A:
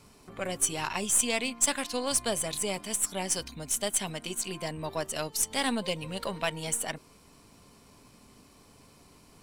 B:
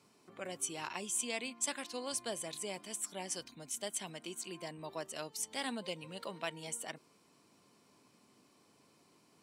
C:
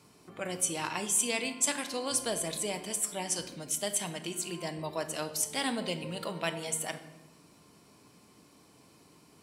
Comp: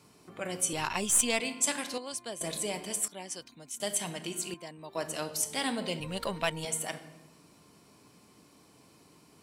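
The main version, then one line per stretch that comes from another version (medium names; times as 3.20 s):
C
0.73–1.40 s: from A
1.98–2.41 s: from B
3.08–3.80 s: from B
4.54–4.95 s: from B
6.00–6.65 s: from A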